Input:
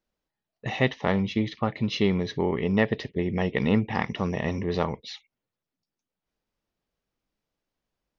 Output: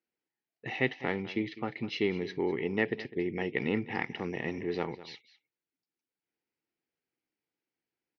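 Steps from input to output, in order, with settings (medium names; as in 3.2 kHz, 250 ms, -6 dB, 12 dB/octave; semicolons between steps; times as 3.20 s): cabinet simulation 180–5000 Hz, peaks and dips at 200 Hz -7 dB, 340 Hz +4 dB, 600 Hz -10 dB, 1.1 kHz -10 dB, 2.2 kHz +4 dB, 3.6 kHz -7 dB; delay 203 ms -16.5 dB; trim -4 dB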